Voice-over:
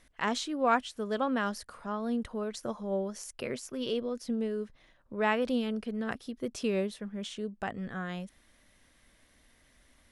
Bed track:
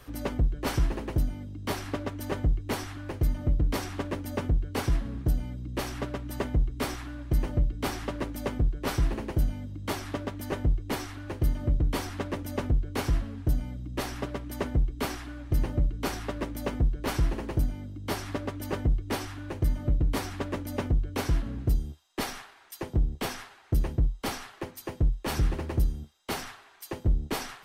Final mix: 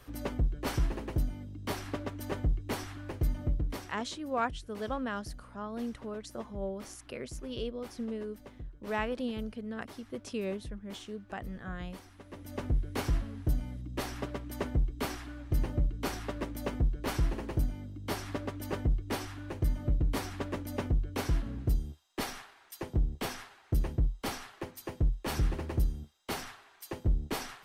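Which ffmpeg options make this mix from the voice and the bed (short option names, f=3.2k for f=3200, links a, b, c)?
-filter_complex "[0:a]adelay=3700,volume=-5dB[a];[1:a]volume=11.5dB,afade=t=out:st=3.4:d=0.63:silence=0.177828,afade=t=in:st=12.25:d=0.53:silence=0.16788[b];[a][b]amix=inputs=2:normalize=0"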